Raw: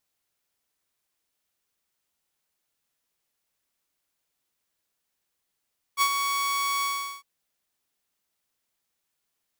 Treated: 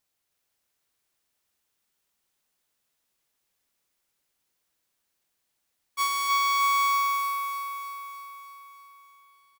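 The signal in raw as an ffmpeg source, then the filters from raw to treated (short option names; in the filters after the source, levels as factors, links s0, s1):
-f lavfi -i "aevalsrc='0.168*(2*mod(1120*t,1)-1)':d=1.256:s=44100,afade=t=in:d=0.047,afade=t=out:st=0.047:d=0.067:silence=0.473,afade=t=out:st=0.86:d=0.396"
-filter_complex "[0:a]asoftclip=type=tanh:threshold=0.1,asplit=2[s0][s1];[s1]aecho=0:1:309|618|927|1236|1545|1854|2163|2472|2781:0.668|0.401|0.241|0.144|0.0866|0.052|0.0312|0.0187|0.0112[s2];[s0][s2]amix=inputs=2:normalize=0"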